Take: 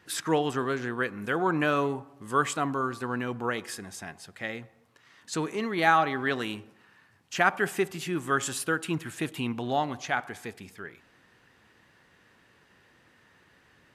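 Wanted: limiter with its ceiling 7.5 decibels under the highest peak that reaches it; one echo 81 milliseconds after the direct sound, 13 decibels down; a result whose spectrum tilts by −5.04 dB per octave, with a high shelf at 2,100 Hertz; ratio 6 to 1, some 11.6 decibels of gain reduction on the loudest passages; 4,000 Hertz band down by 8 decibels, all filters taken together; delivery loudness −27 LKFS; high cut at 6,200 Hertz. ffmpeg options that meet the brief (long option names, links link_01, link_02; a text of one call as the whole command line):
ffmpeg -i in.wav -af "lowpass=6200,highshelf=frequency=2100:gain=-5.5,equalizer=frequency=4000:width_type=o:gain=-5,acompressor=threshold=-31dB:ratio=6,alimiter=level_in=2dB:limit=-24dB:level=0:latency=1,volume=-2dB,aecho=1:1:81:0.224,volume=11dB" out.wav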